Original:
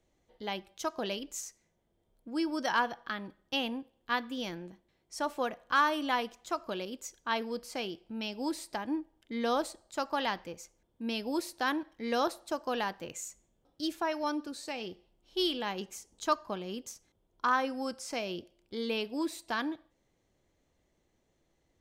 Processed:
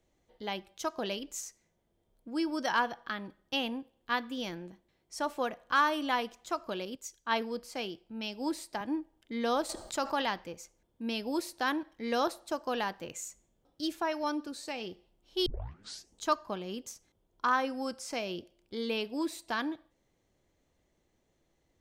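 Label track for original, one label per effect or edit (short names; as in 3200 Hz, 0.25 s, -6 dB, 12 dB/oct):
6.950000	8.810000	three-band expander depth 40%
9.690000	10.220000	fast leveller amount 50%
15.460000	15.460000	tape start 0.68 s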